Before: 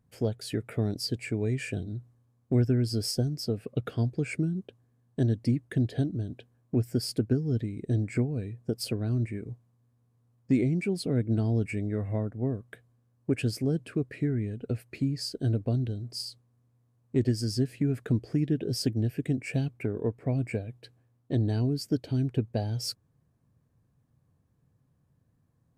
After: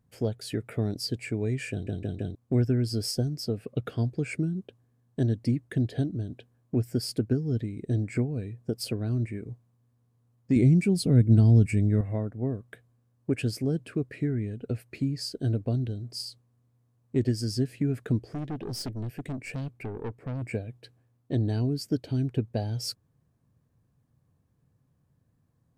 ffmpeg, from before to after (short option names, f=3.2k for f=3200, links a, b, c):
-filter_complex "[0:a]asettb=1/sr,asplit=3[a][b][c];[a]atrim=end=10.564[d];[b]atrim=start=10.56:end=12.01,asetpts=PTS-STARTPTS,afade=t=in:d=0.004:c=qsin,afade=t=out:st=1.446:d=0.004:c=qsin,bass=f=250:g=10,treble=f=4k:g=7[e];[c]atrim=start=12.006[f];[d][e]acrossfade=d=0.004:c1=hsin:c2=qsin[g];[g][f]acrossfade=d=0.004:c1=qsin:c2=hsin,asettb=1/sr,asplit=3[h][i][j];[h]atrim=end=18.234[k];[i]atrim=start=18.23:end=20.42,asetpts=PTS-STARTPTS,afade=t=in:d=0.004:c=qsin,afade=t=out:st=2.186:d=0.004:c=qsin,aeval=exprs='(tanh(31.6*val(0)+0.35)-tanh(0.35))/31.6':c=same[l];[j]atrim=start=20.416[m];[k][l]acrossfade=d=0.004:c1=hsin:c2=qsin[n];[n][m]acrossfade=d=0.004:c1=qsin:c2=hsin,asplit=5[o][p][q][r][s];[o]atrim=end=1.872[t];[p]atrim=start=1.708:end=1.872[u];[q]atrim=start=1.708:end=1.872[v];[r]atrim=start=1.708:end=1.872[w];[s]atrim=start=2.348[x];[t][u]acrossfade=d=0.004:c1=hsin:c2=hsin[y];[y][v]acrossfade=d=0.004:c1=hsin:c2=hsin[z];[z][w]acrossfade=d=0.004:c1=hsin:c2=hsin[aa];[aa][x]acrossfade=d=0.004:c1=hsin:c2=hsin"